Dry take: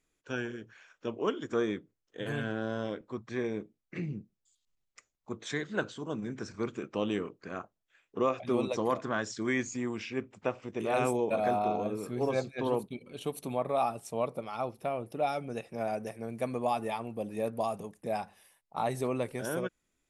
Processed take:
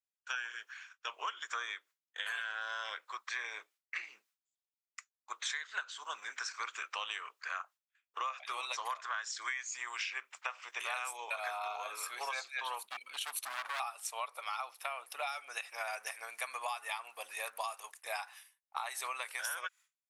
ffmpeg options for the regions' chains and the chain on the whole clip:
-filter_complex "[0:a]asettb=1/sr,asplit=3[s0][s1][s2];[s0]atrim=end=12.844[s3];[s1]atrim=start=12.84:end=13.8,asetpts=PTS-STARTPTS,afade=t=in:d=0.004:c=qsin,afade=t=out:st=0.956:d=0.004:c=qsin,lowshelf=f=340:t=q:w=1.5:g=10,asoftclip=type=hard:threshold=0.0251[s4];[s2]atrim=start=13.796[s5];[s3][s4]acrossfade=d=0.004:c1=hsin:c2=qsin[s6];[s6][s5]acrossfade=d=0.004:c1=qsin:c2=hsin,agate=range=0.0224:threshold=0.00282:ratio=3:detection=peak,highpass=f=1100:w=0.5412,highpass=f=1100:w=1.3066,acompressor=threshold=0.00501:ratio=10,volume=3.55"

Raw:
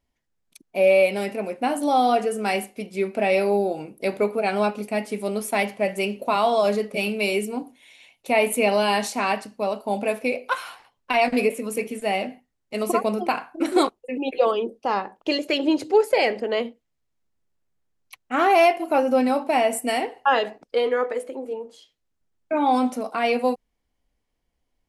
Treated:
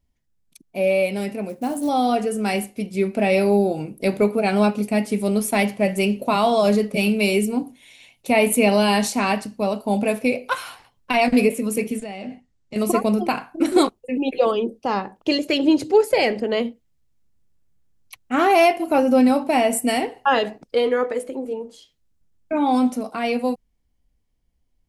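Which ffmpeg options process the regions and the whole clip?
-filter_complex "[0:a]asettb=1/sr,asplit=3[s0][s1][s2];[s0]atrim=end=1.494[s3];[s1]atrim=start=1.49:end=1.89,asetpts=PTS-STARTPTS,afade=t=in:d=0.004:c=qsin,afade=t=out:st=0.396:d=0.004:c=qsin,highpass=f=66:p=1,equalizer=f=2400:t=o:w=1.8:g=-9,acrusher=bits=6:mode=log:mix=0:aa=0.000001[s4];[s2]atrim=start=1.886[s5];[s3][s4]acrossfade=d=0.004:c1=hsin:c2=qsin[s6];[s6][s5]acrossfade=d=0.004:c1=qsin:c2=hsin,asettb=1/sr,asplit=3[s7][s8][s9];[s7]atrim=end=12.004[s10];[s8]atrim=start=12:end=12.76,asetpts=PTS-STARTPTS,afade=t=in:d=0.004:c=qsin,afade=t=out:st=0.756:d=0.004:c=qsin,acompressor=threshold=0.0251:ratio=5:attack=3.2:release=140:knee=1:detection=peak,lowpass=f=8100:w=0.5412,lowpass=f=8100:w=1.3066[s11];[s9]atrim=start=12.756[s12];[s10][s11]acrossfade=d=0.004:c1=hsin:c2=qsin[s13];[s13][s12]acrossfade=d=0.004:c1=qsin:c2=hsin,bass=f=250:g=8,treble=f=4000:g=1,dynaudnorm=f=160:g=31:m=2,equalizer=f=1100:w=0.33:g=-4"

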